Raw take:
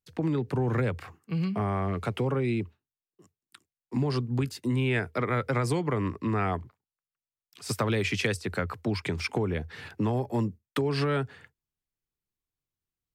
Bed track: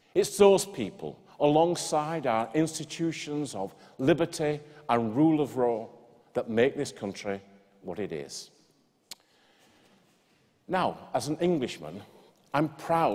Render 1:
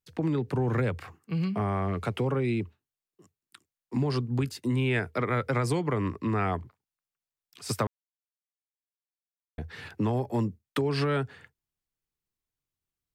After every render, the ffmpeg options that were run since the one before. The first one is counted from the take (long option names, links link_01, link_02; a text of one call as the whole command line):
ffmpeg -i in.wav -filter_complex "[0:a]asplit=3[link_01][link_02][link_03];[link_01]atrim=end=7.87,asetpts=PTS-STARTPTS,afade=type=out:start_time=7.866:duration=0.004:curve=hsin[link_04];[link_02]atrim=start=7.87:end=9.58,asetpts=PTS-STARTPTS,volume=0[link_05];[link_03]atrim=start=9.58,asetpts=PTS-STARTPTS,afade=type=in:duration=0.004:curve=hsin[link_06];[link_04][link_05][link_06]concat=n=3:v=0:a=1" out.wav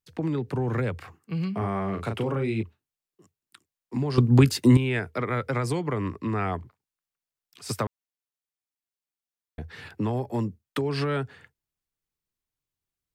ffmpeg -i in.wav -filter_complex "[0:a]asettb=1/sr,asplit=3[link_01][link_02][link_03];[link_01]atrim=end=1.584[link_04];[link_02]atrim=start=1.58:end=2.63,asetpts=PTS-STARTPTS,afade=type=in:duration=0.004:curve=qsin,afade=type=out:start_time=1.046:duration=0.004:curve=qsin,asplit=2[link_05][link_06];[link_06]adelay=36,volume=-6dB[link_07];[link_05][link_07]amix=inputs=2:normalize=0,atrim=end_sample=46305[link_08];[link_03]atrim=start=2.626[link_09];[link_04][link_08]acrossfade=duration=0.004:curve1=hsin:curve2=qsin[link_10];[link_10][link_09]acrossfade=duration=0.004:curve1=qsin:curve2=hsin,asettb=1/sr,asplit=3[link_11][link_12][link_13];[link_11]atrim=end=9.834[link_14];[link_12]atrim=start=9.83:end=10.26,asetpts=PTS-STARTPTS,afade=type=in:duration=0.004:curve=qsin,afade=type=out:start_time=0.426:duration=0.004:curve=qsin,bandreject=frequency=6200:width=12[link_15];[link_13]atrim=start=10.256[link_16];[link_14][link_15]acrossfade=duration=0.004:curve1=hsin:curve2=qsin[link_17];[link_17][link_16]acrossfade=duration=0.004:curve1=qsin:curve2=hsin,asplit=3[link_18][link_19][link_20];[link_18]atrim=end=4.182[link_21];[link_19]atrim=start=4.178:end=4.772,asetpts=PTS-STARTPTS,volume=11.5dB[link_22];[link_20]atrim=start=4.768[link_23];[link_21][link_22]acrossfade=duration=0.004:curve1=hsin:curve2=hsin[link_24];[link_24][link_23]acrossfade=duration=0.004:curve1=hsin:curve2=hsin" out.wav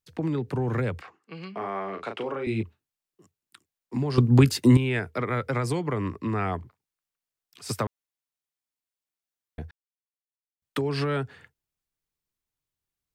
ffmpeg -i in.wav -filter_complex "[0:a]asettb=1/sr,asplit=3[link_01][link_02][link_03];[link_01]atrim=end=1.014[link_04];[link_02]atrim=start=1.01:end=2.47,asetpts=PTS-STARTPTS,afade=type=in:duration=0.004:curve=qsin,afade=type=out:start_time=1.456:duration=0.004:curve=qsin,highpass=370,lowpass=5100[link_05];[link_03]atrim=start=2.466[link_06];[link_04][link_05]acrossfade=duration=0.004:curve1=hsin:curve2=qsin[link_07];[link_07][link_06]acrossfade=duration=0.004:curve1=qsin:curve2=hsin,asplit=3[link_08][link_09][link_10];[link_08]atrim=end=9.71,asetpts=PTS-STARTPTS,afade=type=out:start_time=9.706:duration=0.004:curve=hsin[link_11];[link_09]atrim=start=9.71:end=10.62,asetpts=PTS-STARTPTS,volume=0[link_12];[link_10]atrim=start=10.62,asetpts=PTS-STARTPTS,afade=type=in:duration=0.004:curve=hsin[link_13];[link_11][link_12][link_13]concat=n=3:v=0:a=1" out.wav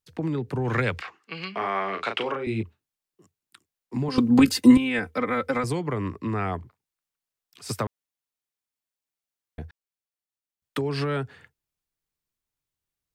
ffmpeg -i in.wav -filter_complex "[0:a]asplit=3[link_01][link_02][link_03];[link_01]afade=type=out:start_time=0.64:duration=0.02[link_04];[link_02]equalizer=frequency=3100:width=0.37:gain=11.5,afade=type=in:start_time=0.64:duration=0.02,afade=type=out:start_time=2.35:duration=0.02[link_05];[link_03]afade=type=in:start_time=2.35:duration=0.02[link_06];[link_04][link_05][link_06]amix=inputs=3:normalize=0,asettb=1/sr,asplit=3[link_07][link_08][link_09];[link_07]atrim=end=4.084[link_10];[link_08]atrim=start=4.08:end=5.64,asetpts=PTS-STARTPTS,afade=type=in:duration=0.004:curve=qsin,afade=type=out:start_time=1.556:duration=0.004:curve=qsin,aecho=1:1:3.9:0.89,atrim=end_sample=68796[link_11];[link_09]atrim=start=5.636[link_12];[link_10][link_11]acrossfade=duration=0.004:curve1=hsin:curve2=qsin[link_13];[link_13][link_12]acrossfade=duration=0.004:curve1=qsin:curve2=hsin" out.wav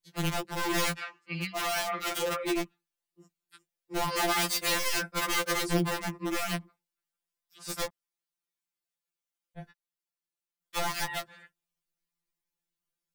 ffmpeg -i in.wav -af "aeval=exprs='(mod(10*val(0)+1,2)-1)/10':channel_layout=same,afftfilt=real='re*2.83*eq(mod(b,8),0)':imag='im*2.83*eq(mod(b,8),0)':win_size=2048:overlap=0.75" out.wav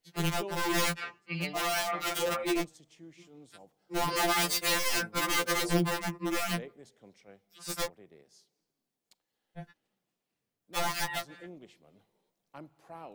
ffmpeg -i in.wav -i bed.wav -filter_complex "[1:a]volume=-21.5dB[link_01];[0:a][link_01]amix=inputs=2:normalize=0" out.wav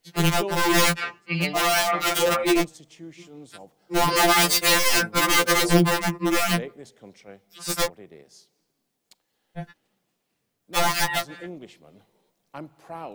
ffmpeg -i in.wav -af "volume=9.5dB" out.wav